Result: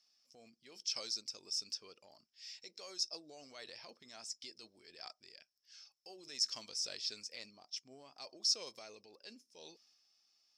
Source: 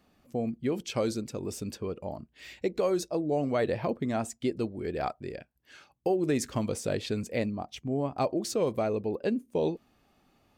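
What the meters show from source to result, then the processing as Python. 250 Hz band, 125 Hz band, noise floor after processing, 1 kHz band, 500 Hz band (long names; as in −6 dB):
−30.5 dB, below −35 dB, −83 dBFS, −22.5 dB, −26.5 dB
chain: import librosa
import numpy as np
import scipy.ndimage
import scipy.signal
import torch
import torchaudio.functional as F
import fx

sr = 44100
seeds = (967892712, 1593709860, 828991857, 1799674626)

y = fx.bandpass_q(x, sr, hz=5300.0, q=16.0)
y = fx.transient(y, sr, attack_db=-4, sustain_db=5)
y = y * 10.0 ** (17.0 / 20.0)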